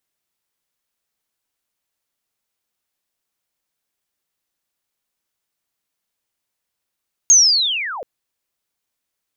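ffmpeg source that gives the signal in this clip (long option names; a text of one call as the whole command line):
ffmpeg -f lavfi -i "aevalsrc='pow(10,(-5.5-21.5*t/0.73)/20)*sin(2*PI*(6600*t-6160*t*t/(2*0.73)))':duration=0.73:sample_rate=44100" out.wav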